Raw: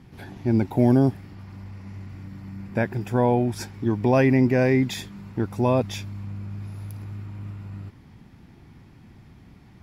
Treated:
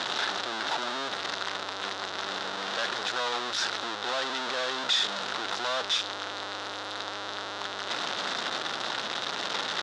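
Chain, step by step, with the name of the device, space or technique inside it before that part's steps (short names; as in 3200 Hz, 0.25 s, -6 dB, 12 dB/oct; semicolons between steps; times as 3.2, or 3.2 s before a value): home computer beeper (infinite clipping; speaker cabinet 670–5900 Hz, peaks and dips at 1400 Hz +5 dB, 2300 Hz -6 dB, 3700 Hz +9 dB); gain -1 dB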